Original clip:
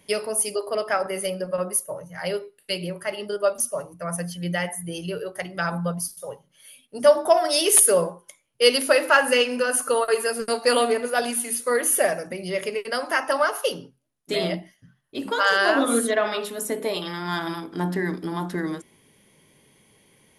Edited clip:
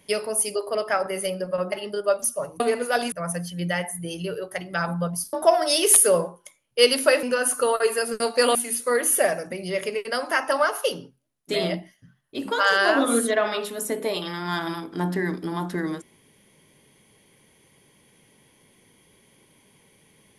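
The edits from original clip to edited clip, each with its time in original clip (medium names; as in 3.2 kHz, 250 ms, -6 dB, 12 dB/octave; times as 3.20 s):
1.72–3.08 s: delete
6.17–7.16 s: delete
9.06–9.51 s: delete
10.83–11.35 s: move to 3.96 s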